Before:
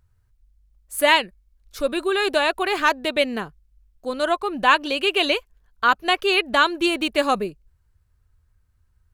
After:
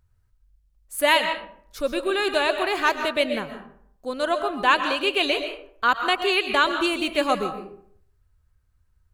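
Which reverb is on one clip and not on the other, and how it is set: algorithmic reverb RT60 0.62 s, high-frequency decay 0.55×, pre-delay 85 ms, DRR 7 dB; trim -2.5 dB

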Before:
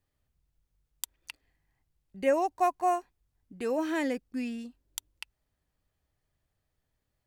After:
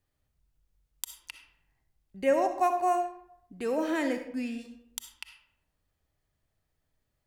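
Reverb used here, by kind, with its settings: algorithmic reverb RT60 0.74 s, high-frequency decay 0.6×, pre-delay 20 ms, DRR 6.5 dB

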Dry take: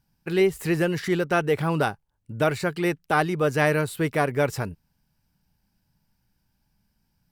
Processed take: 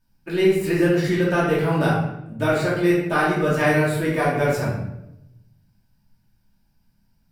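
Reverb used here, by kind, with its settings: simulated room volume 260 m³, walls mixed, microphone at 2.7 m; trim -5.5 dB

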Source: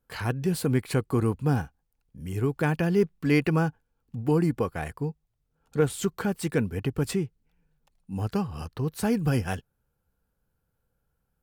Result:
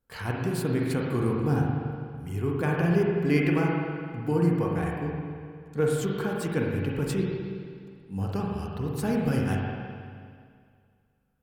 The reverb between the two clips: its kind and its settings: spring tank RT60 2.1 s, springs 41/52 ms, chirp 80 ms, DRR -2 dB; trim -4 dB

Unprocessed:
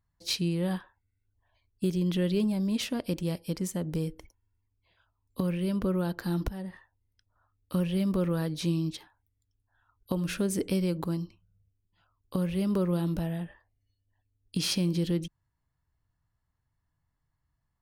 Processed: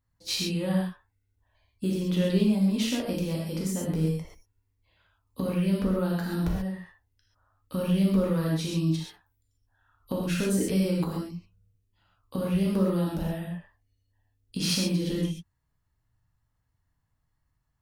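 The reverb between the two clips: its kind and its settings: gated-style reverb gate 160 ms flat, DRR -4 dB; trim -2.5 dB

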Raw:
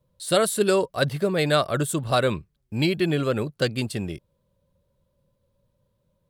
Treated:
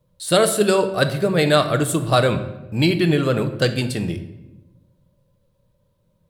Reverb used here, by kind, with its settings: simulated room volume 400 m³, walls mixed, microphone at 0.53 m; trim +4 dB

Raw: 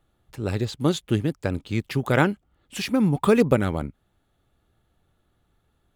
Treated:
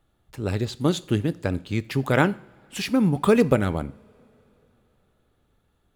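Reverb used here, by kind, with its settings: two-slope reverb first 0.49 s, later 3.9 s, from -22 dB, DRR 15.5 dB

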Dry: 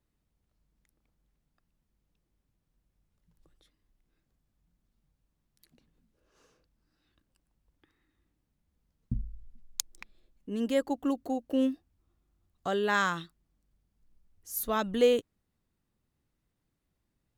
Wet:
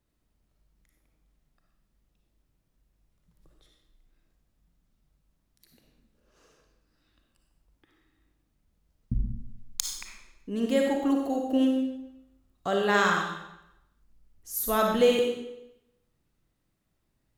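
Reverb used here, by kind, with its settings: algorithmic reverb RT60 0.86 s, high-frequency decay 0.95×, pre-delay 15 ms, DRR 0.5 dB; trim +2 dB

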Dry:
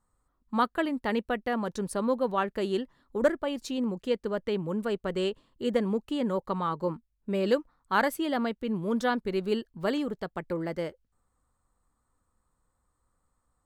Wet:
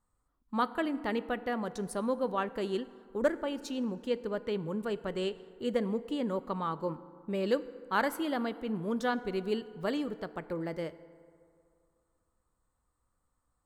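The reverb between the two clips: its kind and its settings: FDN reverb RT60 2.4 s, low-frequency decay 0.9×, high-frequency decay 0.45×, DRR 14 dB; trim -4 dB

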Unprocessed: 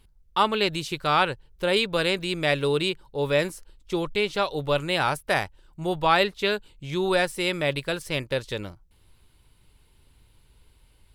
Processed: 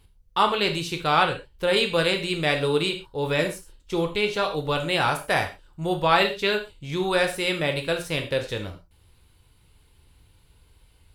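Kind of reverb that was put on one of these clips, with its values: gated-style reverb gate 150 ms falling, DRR 4 dB

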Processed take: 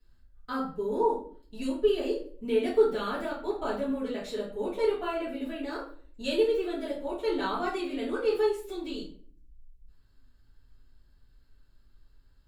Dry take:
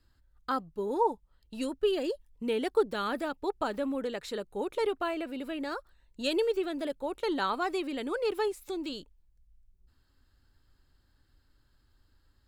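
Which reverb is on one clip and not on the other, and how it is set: simulated room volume 45 m³, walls mixed, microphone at 1.9 m; trim -10.5 dB

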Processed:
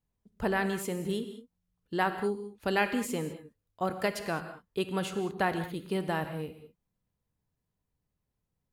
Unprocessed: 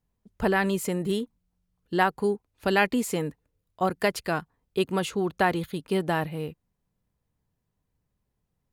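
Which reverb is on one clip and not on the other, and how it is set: gated-style reverb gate 230 ms flat, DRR 8.5 dB; trim -5.5 dB

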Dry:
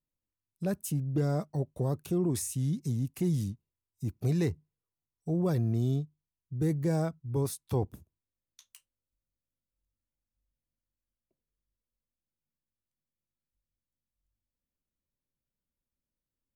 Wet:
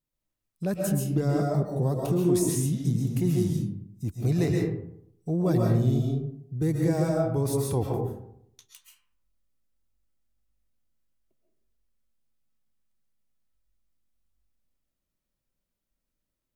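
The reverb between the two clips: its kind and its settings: algorithmic reverb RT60 0.73 s, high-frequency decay 0.45×, pre-delay 95 ms, DRR -1.5 dB; trim +2.5 dB

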